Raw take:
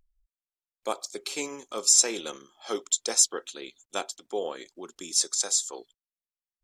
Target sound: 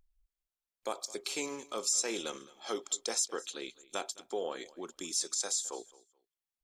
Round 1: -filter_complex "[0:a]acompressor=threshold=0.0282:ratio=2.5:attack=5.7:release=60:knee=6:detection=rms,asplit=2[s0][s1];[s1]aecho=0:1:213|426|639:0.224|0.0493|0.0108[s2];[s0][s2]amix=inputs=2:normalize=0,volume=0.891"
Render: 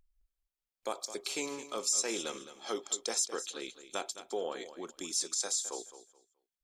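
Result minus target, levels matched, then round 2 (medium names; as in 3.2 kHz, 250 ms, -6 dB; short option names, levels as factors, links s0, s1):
echo-to-direct +8 dB
-filter_complex "[0:a]acompressor=threshold=0.0282:ratio=2.5:attack=5.7:release=60:knee=6:detection=rms,asplit=2[s0][s1];[s1]aecho=0:1:213|426:0.0891|0.0196[s2];[s0][s2]amix=inputs=2:normalize=0,volume=0.891"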